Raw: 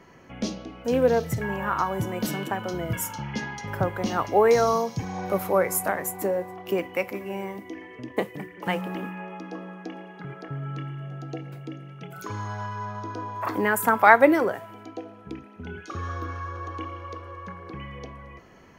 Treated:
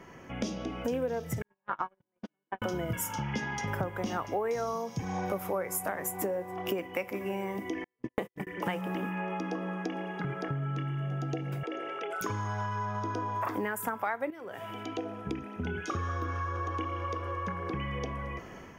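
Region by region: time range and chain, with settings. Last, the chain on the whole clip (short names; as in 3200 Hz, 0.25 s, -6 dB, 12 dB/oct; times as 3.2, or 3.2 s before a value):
1.42–2.62 BPF 210–2800 Hz + gate -25 dBFS, range -60 dB
7.84–8.47 HPF 56 Hz + gate -35 dBFS, range -49 dB
11.63–12.21 elliptic band-pass 410–9900 Hz, stop band 50 dB + high shelf 3500 Hz -11.5 dB + fast leveller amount 70%
14.3–14.99 HPF 41 Hz + bell 3100 Hz +7.5 dB 0.98 oct + compressor 2.5:1, threshold -37 dBFS
whole clip: AGC gain up to 5 dB; notch 4200 Hz, Q 5.9; compressor 6:1, threshold -32 dBFS; gain +1.5 dB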